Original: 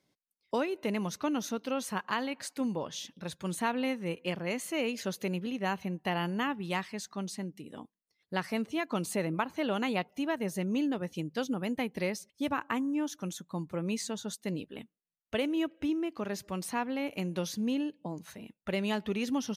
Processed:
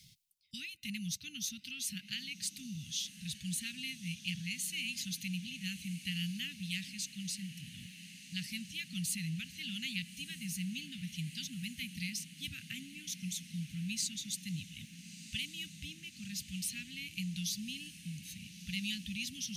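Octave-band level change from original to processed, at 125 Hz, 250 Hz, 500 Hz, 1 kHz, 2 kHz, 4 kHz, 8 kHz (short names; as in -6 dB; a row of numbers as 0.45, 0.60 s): -2.5 dB, -10.0 dB, under -40 dB, under -40 dB, -4.5 dB, +3.0 dB, +4.0 dB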